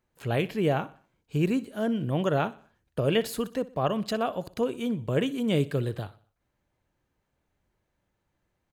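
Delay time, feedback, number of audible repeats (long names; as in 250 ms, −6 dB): 61 ms, 45%, 3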